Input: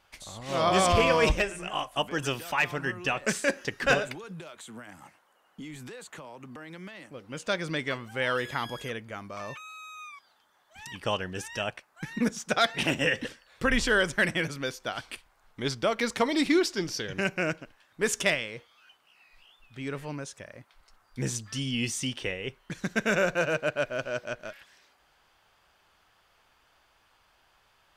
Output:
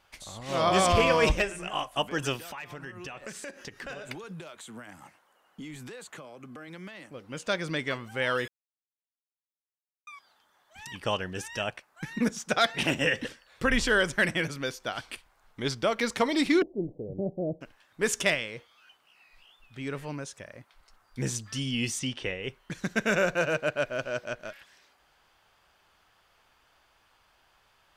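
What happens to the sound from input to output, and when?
2.36–4.09 s: compression 5:1, threshold -38 dBFS
6.17–6.68 s: comb of notches 920 Hz
8.48–10.07 s: mute
16.62–17.61 s: steep low-pass 700 Hz 48 dB/octave
21.99–22.44 s: distance through air 52 m

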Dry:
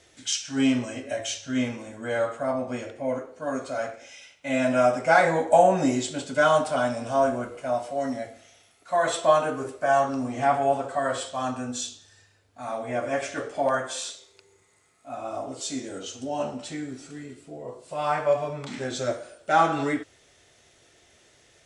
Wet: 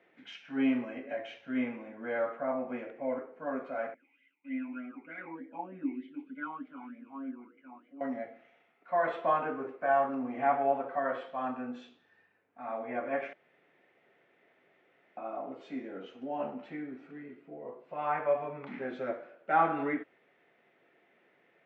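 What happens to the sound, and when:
3.94–8.01 s: talking filter i-u 3.3 Hz
13.33–15.17 s: room tone
whole clip: Chebyshev band-pass 180–2300 Hz, order 3; band-stop 610 Hz, Q 16; trim -5 dB

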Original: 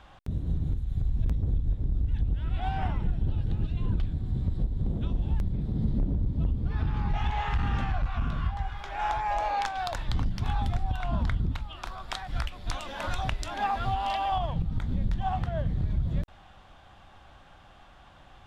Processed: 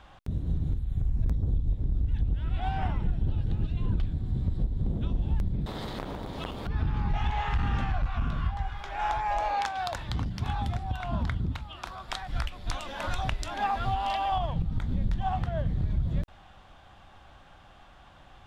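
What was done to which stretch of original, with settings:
0.77–1.77 s: peaking EQ 6.4 kHz -> 1.4 kHz -11 dB 0.44 oct
5.66–6.67 s: spectrum-flattening compressor 4:1
9.57–12.09 s: high-pass 56 Hz

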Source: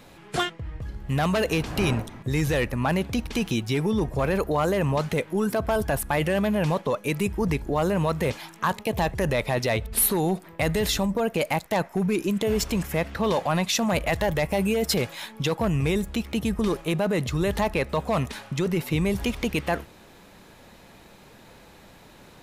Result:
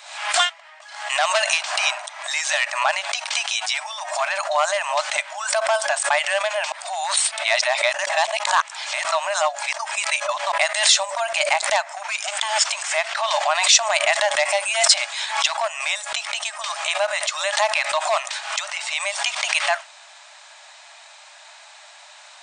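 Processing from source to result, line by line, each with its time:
6.72–10.52 s: reverse
12.22–12.64 s: comb filter that takes the minimum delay 0.58 ms
whole clip: FFT band-pass 580–9200 Hz; tilt EQ +2.5 dB/octave; swell ahead of each attack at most 75 dB/s; trim +6 dB

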